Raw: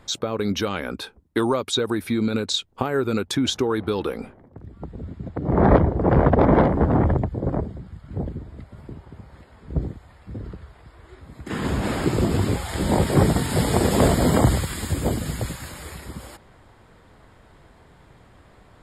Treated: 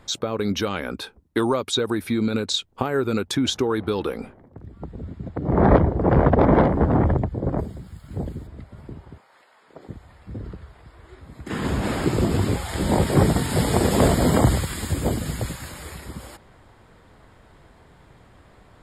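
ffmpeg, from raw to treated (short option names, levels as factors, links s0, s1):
-filter_complex "[0:a]asplit=3[s0][s1][s2];[s0]afade=t=out:st=7.57:d=0.02[s3];[s1]aemphasis=mode=production:type=75fm,afade=t=in:st=7.57:d=0.02,afade=t=out:st=8.46:d=0.02[s4];[s2]afade=t=in:st=8.46:d=0.02[s5];[s3][s4][s5]amix=inputs=3:normalize=0,asettb=1/sr,asplit=3[s6][s7][s8];[s6]atrim=end=9.184[s9];[s7]atrim=start=9.18:end=9.89,asetpts=PTS-STARTPTS,afade=t=in:d=0.004:c=qsin,afade=t=out:st=0.706:d=0.004:c=qsin,highpass=740[s10];[s8]atrim=start=9.886[s11];[s9][s10]acrossfade=d=0.004:c1=hsin:c2=qsin[s12];[s12][s11]acrossfade=d=0.004:c1=qsin:c2=hsin"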